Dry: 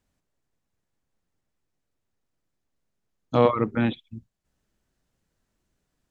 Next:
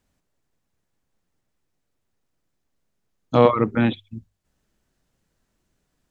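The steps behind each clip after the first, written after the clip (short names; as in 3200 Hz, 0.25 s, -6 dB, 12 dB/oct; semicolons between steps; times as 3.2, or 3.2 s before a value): notches 50/100 Hz; gain +4 dB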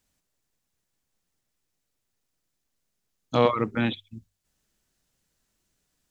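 high shelf 2400 Hz +11 dB; gain -6.5 dB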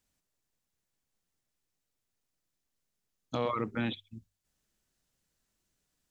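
limiter -15.5 dBFS, peak gain reduction 8 dB; gain -5 dB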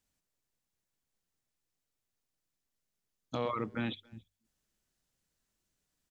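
speakerphone echo 0.28 s, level -25 dB; gain -2.5 dB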